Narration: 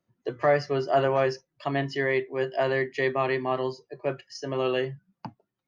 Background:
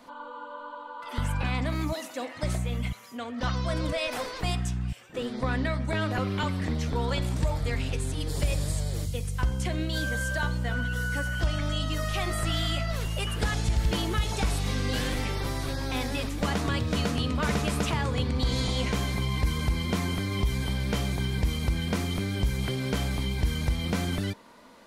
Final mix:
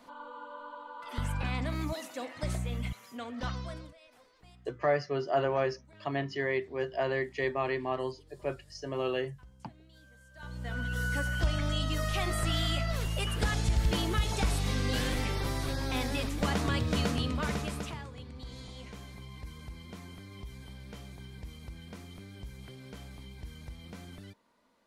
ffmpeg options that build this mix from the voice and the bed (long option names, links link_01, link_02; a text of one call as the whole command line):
ffmpeg -i stem1.wav -i stem2.wav -filter_complex "[0:a]adelay=4400,volume=-5.5dB[link_01];[1:a]volume=22dB,afade=type=out:start_time=3.33:duration=0.61:silence=0.0630957,afade=type=in:start_time=10.34:duration=0.72:silence=0.0473151,afade=type=out:start_time=17.05:duration=1.06:silence=0.158489[link_02];[link_01][link_02]amix=inputs=2:normalize=0" out.wav